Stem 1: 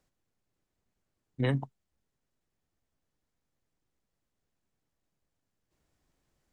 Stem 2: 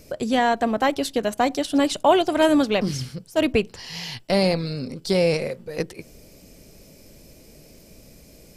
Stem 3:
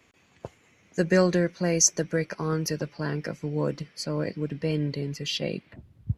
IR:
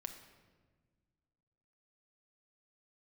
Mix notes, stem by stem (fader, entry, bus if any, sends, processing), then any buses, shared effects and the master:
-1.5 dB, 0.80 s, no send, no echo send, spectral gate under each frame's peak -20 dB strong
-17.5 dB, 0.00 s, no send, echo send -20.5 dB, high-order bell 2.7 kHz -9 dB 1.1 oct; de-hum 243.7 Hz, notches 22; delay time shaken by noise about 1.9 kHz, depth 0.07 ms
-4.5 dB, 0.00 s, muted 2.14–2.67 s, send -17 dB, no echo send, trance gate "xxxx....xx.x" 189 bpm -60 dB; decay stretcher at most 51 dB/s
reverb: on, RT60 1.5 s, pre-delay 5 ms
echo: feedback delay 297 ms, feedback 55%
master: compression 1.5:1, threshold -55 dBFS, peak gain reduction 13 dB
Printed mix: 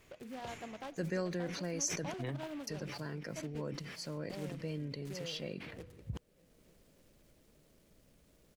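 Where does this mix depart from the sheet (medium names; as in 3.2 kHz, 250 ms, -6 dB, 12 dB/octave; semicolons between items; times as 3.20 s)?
stem 1: missing spectral gate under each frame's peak -20 dB strong; stem 3: missing trance gate "xxxx....xx.x" 189 bpm -60 dB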